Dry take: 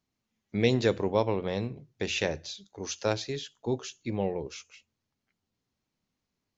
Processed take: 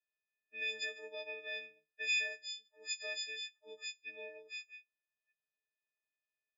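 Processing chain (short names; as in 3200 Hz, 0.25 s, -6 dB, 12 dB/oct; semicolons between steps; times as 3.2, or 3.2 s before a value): frequency quantiser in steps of 6 st; low-pass opened by the level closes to 1900 Hz, open at -21 dBFS; vowel filter e; limiter -29 dBFS, peak gain reduction 8.5 dB; differentiator; gain +12 dB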